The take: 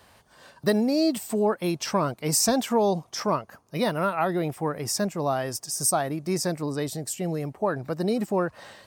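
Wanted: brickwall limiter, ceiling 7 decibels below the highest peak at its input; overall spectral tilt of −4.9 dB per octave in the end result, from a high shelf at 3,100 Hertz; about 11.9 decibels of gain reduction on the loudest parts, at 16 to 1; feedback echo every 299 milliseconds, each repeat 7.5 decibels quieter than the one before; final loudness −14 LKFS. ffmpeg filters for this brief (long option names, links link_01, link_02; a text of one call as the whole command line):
ffmpeg -i in.wav -af "highshelf=frequency=3100:gain=-8,acompressor=threshold=-30dB:ratio=16,alimiter=level_in=3.5dB:limit=-24dB:level=0:latency=1,volume=-3.5dB,aecho=1:1:299|598|897|1196|1495:0.422|0.177|0.0744|0.0312|0.0131,volume=22dB" out.wav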